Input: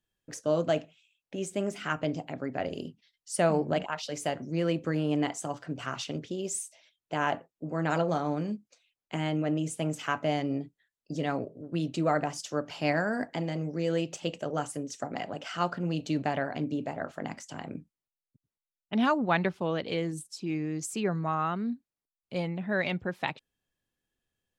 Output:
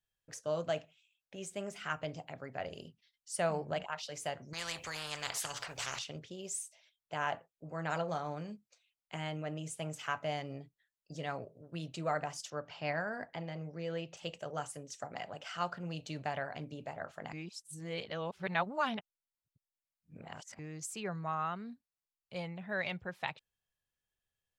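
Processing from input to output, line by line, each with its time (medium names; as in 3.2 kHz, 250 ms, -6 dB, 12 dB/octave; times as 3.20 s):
4.53–5.99 s: spectrum-flattening compressor 4:1
12.50–14.17 s: distance through air 130 m
17.33–20.59 s: reverse
whole clip: peaking EQ 280 Hz -12 dB 1.1 oct; trim -5 dB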